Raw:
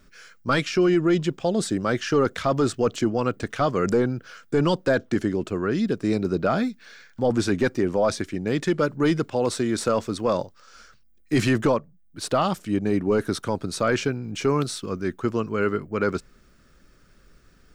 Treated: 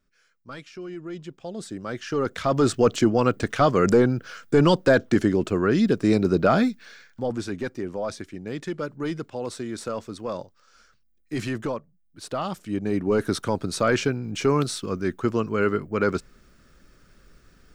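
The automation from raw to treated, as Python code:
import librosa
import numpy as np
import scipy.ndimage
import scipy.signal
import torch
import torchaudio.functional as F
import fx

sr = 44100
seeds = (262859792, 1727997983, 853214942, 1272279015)

y = fx.gain(x, sr, db=fx.line((0.83, -17.5), (2.0, -7.5), (2.74, 3.5), (6.69, 3.5), (7.44, -8.0), (12.25, -8.0), (13.3, 1.0)))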